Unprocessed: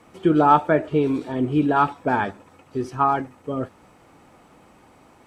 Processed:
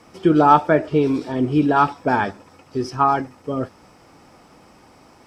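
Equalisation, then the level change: bell 5200 Hz +13.5 dB 0.28 oct; +2.5 dB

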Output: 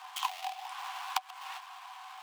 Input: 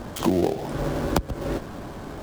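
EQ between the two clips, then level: rippled Chebyshev high-pass 730 Hz, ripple 9 dB; +1.0 dB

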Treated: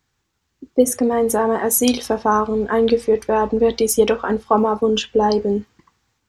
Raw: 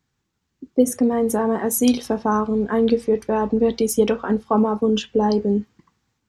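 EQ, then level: bell 190 Hz -8 dB 1.6 oct; +5.5 dB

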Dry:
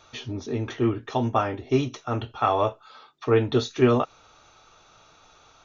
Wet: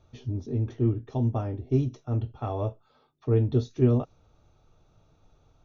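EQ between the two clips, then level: low shelf 150 Hz +6.5 dB; dynamic EQ 5400 Hz, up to +6 dB, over -51 dBFS, Q 1.7; EQ curve 130 Hz 0 dB, 610 Hz -9 dB, 1300 Hz -19 dB; 0.0 dB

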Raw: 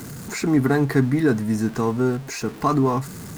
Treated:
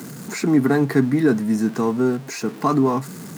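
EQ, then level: HPF 160 Hz 24 dB/oct; low shelf 260 Hz +5.5 dB; 0.0 dB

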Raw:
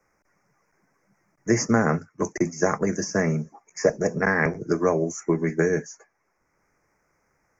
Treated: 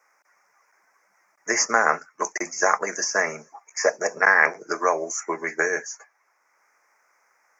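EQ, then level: Chebyshev high-pass 910 Hz, order 2; +7.5 dB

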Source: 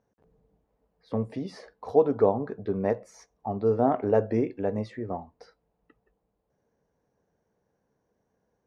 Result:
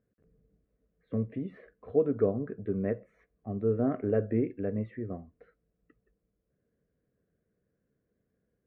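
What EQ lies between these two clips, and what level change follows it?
air absorption 480 m; fixed phaser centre 2100 Hz, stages 4; 0.0 dB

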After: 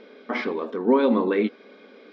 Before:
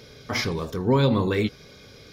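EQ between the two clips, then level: brick-wall FIR band-pass 200–8900 Hz; air absorption 480 m; +4.0 dB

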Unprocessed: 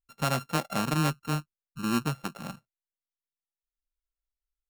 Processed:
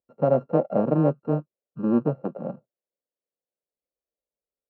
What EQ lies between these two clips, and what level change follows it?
HPF 150 Hz 12 dB/oct; synth low-pass 540 Hz, resonance Q 3.8; +5.5 dB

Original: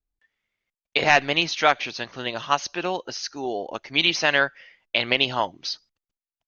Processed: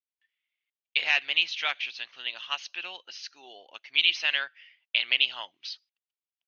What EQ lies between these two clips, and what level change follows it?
band-pass 2900 Hz, Q 2.5; 0.0 dB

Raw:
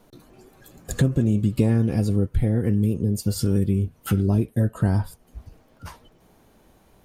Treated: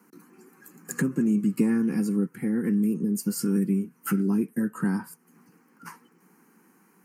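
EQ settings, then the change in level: steep high-pass 170 Hz 48 dB/oct; fixed phaser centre 1500 Hz, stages 4; +2.0 dB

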